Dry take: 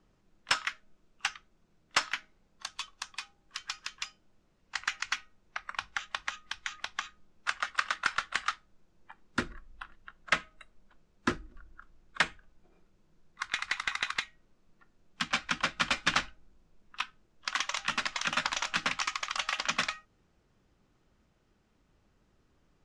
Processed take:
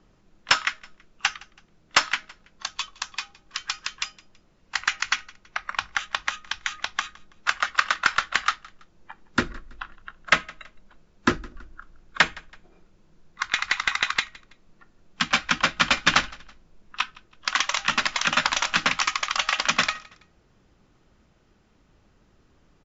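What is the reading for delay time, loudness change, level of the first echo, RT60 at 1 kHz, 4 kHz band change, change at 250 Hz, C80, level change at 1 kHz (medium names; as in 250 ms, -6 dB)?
164 ms, +8.5 dB, -23.5 dB, no reverb, +8.5 dB, +8.5 dB, no reverb, +8.5 dB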